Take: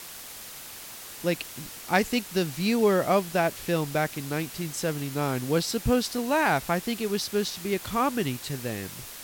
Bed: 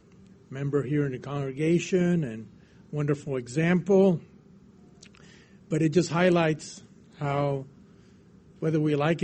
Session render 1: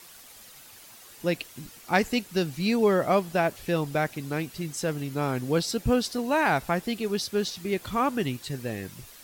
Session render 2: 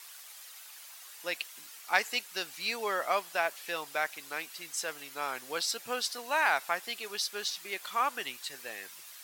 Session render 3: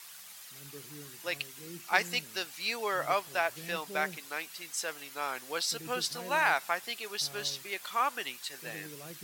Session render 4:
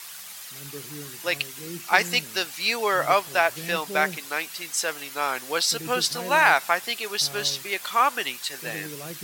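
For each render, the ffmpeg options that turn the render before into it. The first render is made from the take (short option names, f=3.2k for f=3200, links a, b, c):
-af "afftdn=nr=9:nf=-42"
-af "highpass=970"
-filter_complex "[1:a]volume=-23.5dB[a];[0:a][a]amix=inputs=2:normalize=0"
-af "volume=9dB,alimiter=limit=-3dB:level=0:latency=1"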